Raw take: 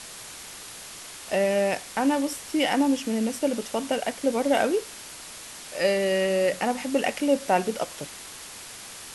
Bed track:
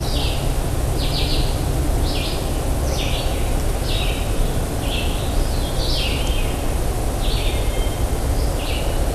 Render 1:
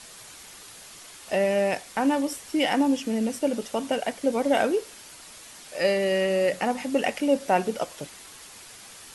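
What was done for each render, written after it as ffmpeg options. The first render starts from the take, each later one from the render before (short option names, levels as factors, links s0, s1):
-af "afftdn=nr=6:nf=-42"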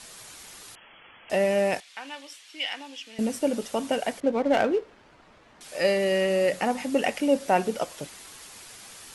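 -filter_complex "[0:a]asettb=1/sr,asplit=3[s0][s1][s2];[s0]atrim=end=0.754[s3];[s1]atrim=start=0.75:end=1.3,asetpts=PTS-STARTPTS,afade=t=in:d=0.004:c=qsin,afade=t=out:st=0.546:d=0.004:c=qsin,lowpass=f=2900:t=q:w=0.5098,lowpass=f=2900:t=q:w=0.6013,lowpass=f=2900:t=q:w=0.9,lowpass=f=2900:t=q:w=2.563,afreqshift=-3400[s4];[s2]atrim=start=1.296[s5];[s3][s4]acrossfade=d=0.004:c1=hsin:c2=qsin[s6];[s6][s5]acrossfade=d=0.004:c1=qsin:c2=hsin,asettb=1/sr,asplit=3[s7][s8][s9];[s7]atrim=end=1.804[s10];[s8]atrim=start=1.8:end=3.19,asetpts=PTS-STARTPTS,afade=t=in:d=0.004:c=qsin,afade=t=out:st=1.386:d=0.004:c=qsin,bandpass=f=3100:t=q:w=1.5[s11];[s9]atrim=start=3.186[s12];[s10][s11]acrossfade=d=0.004:c1=hsin:c2=qsin[s13];[s13][s12]acrossfade=d=0.004:c1=qsin:c2=hsin,asettb=1/sr,asplit=3[s14][s15][s16];[s14]atrim=end=4.204[s17];[s15]atrim=start=4.2:end=5.61,asetpts=PTS-STARTPTS,afade=t=in:d=0.004:c=qsin,afade=t=out:st=1.406:d=0.004:c=qsin,adynamicsmooth=sensitivity=3:basefreq=1500[s18];[s16]atrim=start=5.606[s19];[s17][s18]acrossfade=d=0.004:c1=hsin:c2=qsin[s20];[s20][s19]acrossfade=d=0.004:c1=qsin:c2=hsin"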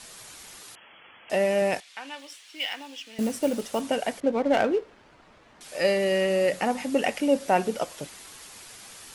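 -filter_complex "[0:a]asettb=1/sr,asplit=3[s0][s1][s2];[s0]atrim=end=0.594[s3];[s1]atrim=start=0.59:end=1.62,asetpts=PTS-STARTPTS,afade=t=in:d=0.004:c=qsin,afade=t=out:st=1.026:d=0.004:c=qsin,highpass=f=120:p=1[s4];[s2]atrim=start=1.616[s5];[s3][s4]acrossfade=d=0.004:c1=hsin:c2=qsin[s6];[s6][s5]acrossfade=d=0.004:c1=qsin:c2=hsin,asettb=1/sr,asplit=3[s7][s8][s9];[s7]atrim=end=2.194[s10];[s8]atrim=start=2.19:end=3.81,asetpts=PTS-STARTPTS,afade=t=in:d=0.004:c=qsin,afade=t=out:st=1.616:d=0.004:c=qsin,acrusher=bits=5:mode=log:mix=0:aa=0.000001[s11];[s9]atrim=start=3.806[s12];[s10][s11]acrossfade=d=0.004:c1=hsin:c2=qsin[s13];[s13][s12]acrossfade=d=0.004:c1=qsin:c2=hsin"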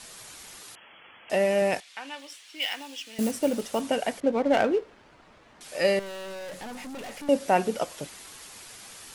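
-filter_complex "[0:a]asettb=1/sr,asplit=3[s0][s1][s2];[s0]atrim=end=2.624[s3];[s1]atrim=start=2.62:end=3.31,asetpts=PTS-STARTPTS,afade=t=in:d=0.004:c=qsin,afade=t=out:st=0.686:d=0.004:c=qsin,highshelf=f=6100:g=7.5[s4];[s2]atrim=start=3.306[s5];[s3][s4]acrossfade=d=0.004:c1=hsin:c2=qsin[s6];[s6][s5]acrossfade=d=0.004:c1=qsin:c2=hsin,asettb=1/sr,asplit=3[s7][s8][s9];[s7]atrim=end=5.994[s10];[s8]atrim=start=5.99:end=7.29,asetpts=PTS-STARTPTS,afade=t=in:d=0.004:c=qsin,afade=t=out:st=1.296:d=0.004:c=qsin,aeval=exprs='(tanh(70.8*val(0)+0.25)-tanh(0.25))/70.8':c=same[s11];[s9]atrim=start=7.286[s12];[s10][s11]acrossfade=d=0.004:c1=hsin:c2=qsin[s13];[s13][s12]acrossfade=d=0.004:c1=qsin:c2=hsin"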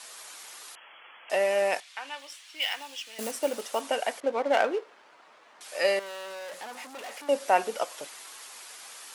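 -af "highpass=510,equalizer=f=1100:w=1.5:g=2.5"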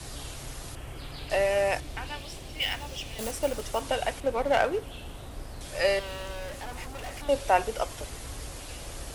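-filter_complex "[1:a]volume=0.0944[s0];[0:a][s0]amix=inputs=2:normalize=0"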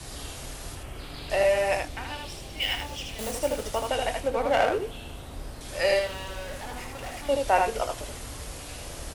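-filter_complex "[0:a]asplit=2[s0][s1];[s1]adelay=24,volume=0.282[s2];[s0][s2]amix=inputs=2:normalize=0,aecho=1:1:78:0.631"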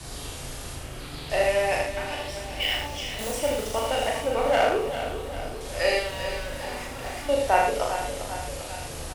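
-filter_complex "[0:a]asplit=2[s0][s1];[s1]adelay=38,volume=0.708[s2];[s0][s2]amix=inputs=2:normalize=0,asplit=2[s3][s4];[s4]aecho=0:1:397|794|1191|1588|1985|2382|2779:0.316|0.18|0.103|0.0586|0.0334|0.019|0.0108[s5];[s3][s5]amix=inputs=2:normalize=0"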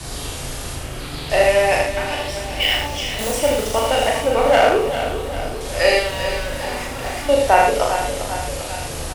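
-af "volume=2.51,alimiter=limit=0.891:level=0:latency=1"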